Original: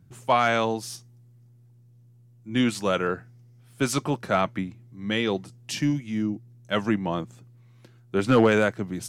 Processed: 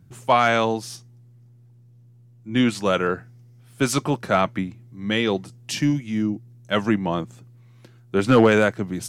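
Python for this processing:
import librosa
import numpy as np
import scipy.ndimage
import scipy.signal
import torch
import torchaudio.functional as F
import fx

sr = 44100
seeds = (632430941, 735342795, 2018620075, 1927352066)

y = fx.high_shelf(x, sr, hz=6600.0, db=-6.0, at=(0.78, 2.86))
y = y * librosa.db_to_amplitude(3.5)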